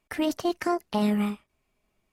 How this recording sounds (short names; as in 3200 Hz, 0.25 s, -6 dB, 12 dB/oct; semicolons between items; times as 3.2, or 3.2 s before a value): noise floor -77 dBFS; spectral tilt -5.0 dB/oct